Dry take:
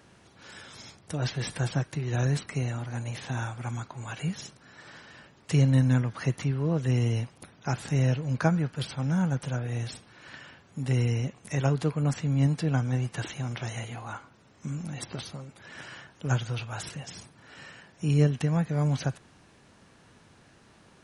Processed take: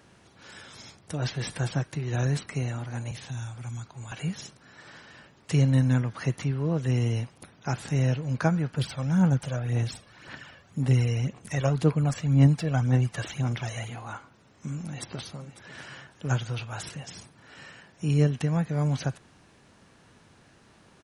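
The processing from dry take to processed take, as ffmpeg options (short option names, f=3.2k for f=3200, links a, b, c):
-filter_complex "[0:a]asettb=1/sr,asplit=3[a][b][c];[a]atrim=end=3.114[d];[b]atrim=start=3.11:end=4.12,asetpts=PTS-STARTPTS,afade=t=in:d=0.004:c=qsin,afade=t=out:st=1.006:d=0.004:c=qsin,acrossover=split=160|3000[e][f][g];[f]acompressor=threshold=-46dB:ratio=6:attack=3.2:release=140:knee=2.83:detection=peak[h];[e][h][g]amix=inputs=3:normalize=0[i];[c]atrim=start=4.116[j];[d][i]acrossfade=d=0.004:c1=hsin:c2=qsin[k];[k][j]acrossfade=d=0.004:c1=qsin:c2=hsin,asettb=1/sr,asplit=3[l][m][n];[l]atrim=end=8.744[o];[m]atrim=start=8.74:end=13.9,asetpts=PTS-STARTPTS,afade=t=in:d=0.004:c=qsin,afade=t=out:st=5.156:d=0.004:c=qsin,aphaser=in_gain=1:out_gain=1:delay=1.8:decay=0.48:speed=1.9:type=sinusoidal[p];[n]atrim=start=13.896[q];[o][p]acrossfade=d=0.004:c1=hsin:c2=qsin[r];[r][q]acrossfade=d=0.004:c1=qsin:c2=hsin,asplit=2[s][t];[t]afade=t=in:st=14.84:d=0.01,afade=t=out:st=15.81:d=0.01,aecho=0:1:550|1100:0.16788|0.0251821[u];[s][u]amix=inputs=2:normalize=0"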